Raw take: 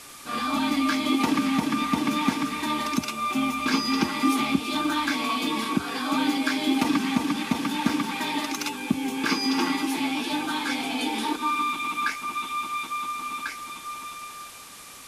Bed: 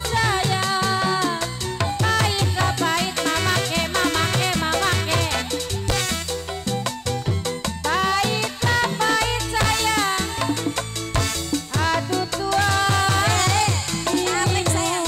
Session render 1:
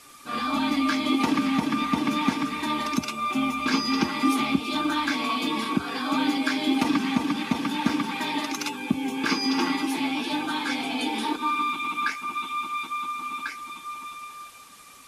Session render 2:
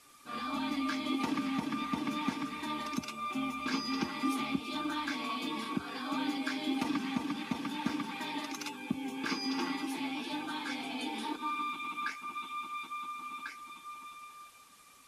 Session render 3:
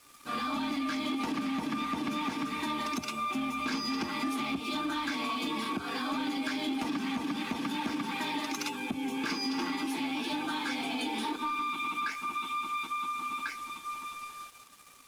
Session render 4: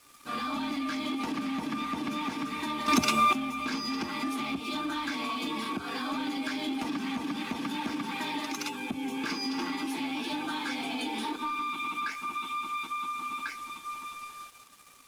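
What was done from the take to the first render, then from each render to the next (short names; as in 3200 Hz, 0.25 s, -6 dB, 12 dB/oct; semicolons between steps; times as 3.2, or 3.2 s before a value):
denoiser 7 dB, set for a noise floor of -43 dBFS
gain -10 dB
sample leveller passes 2; compressor, threshold -30 dBFS, peak gain reduction 7 dB
2.88–3.33 gain +10.5 dB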